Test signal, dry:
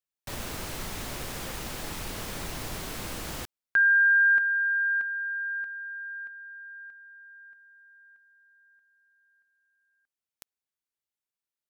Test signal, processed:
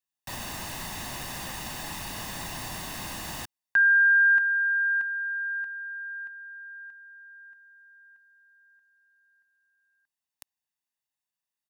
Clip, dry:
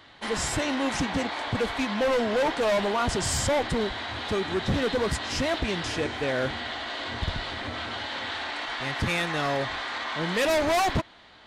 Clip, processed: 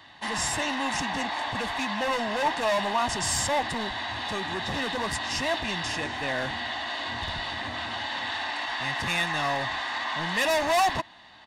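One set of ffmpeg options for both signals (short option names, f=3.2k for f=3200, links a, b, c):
-filter_complex "[0:a]lowshelf=f=84:g=-11.5,aecho=1:1:1.1:0.58,acrossover=split=520[a][b];[a]asoftclip=type=tanh:threshold=-32.5dB[c];[c][b]amix=inputs=2:normalize=0"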